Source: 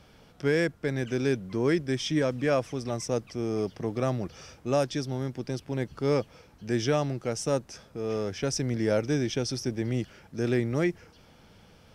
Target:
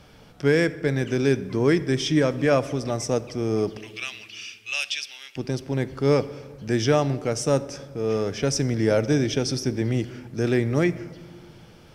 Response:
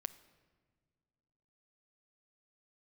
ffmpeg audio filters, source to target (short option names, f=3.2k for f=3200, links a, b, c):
-filter_complex "[0:a]asettb=1/sr,asplit=3[a][b][c];[a]atrim=end=3.774[d];[b]atrim=start=3.77:end=5.36,asetpts=PTS-STARTPTS,afade=t=in:d=0.004:c=qsin,afade=t=out:st=1.586:d=0.004:c=qsin,highpass=f=2.7k:t=q:w=6[e];[c]atrim=start=5.356[f];[d][e]acrossfade=d=0.004:c1=hsin:c2=qsin[g];[g][f]acrossfade=d=0.004:c1=qsin:c2=hsin[h];[1:a]atrim=start_sample=2205[i];[h][i]afir=irnorm=-1:irlink=0,volume=7.5dB"